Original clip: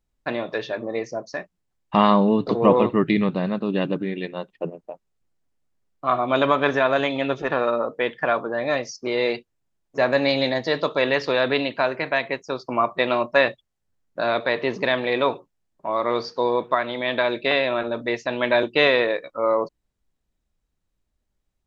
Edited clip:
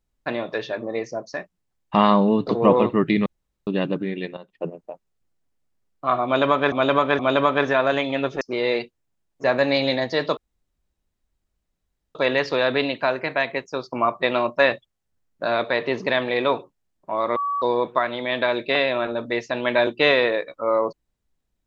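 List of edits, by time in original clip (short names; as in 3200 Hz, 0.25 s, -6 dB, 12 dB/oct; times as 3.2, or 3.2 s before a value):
3.26–3.67 room tone
4.37–4.65 fade in, from -15 dB
6.25–6.72 loop, 3 plays
7.47–8.95 cut
10.91 insert room tone 1.78 s
16.12–16.38 bleep 1140 Hz -21.5 dBFS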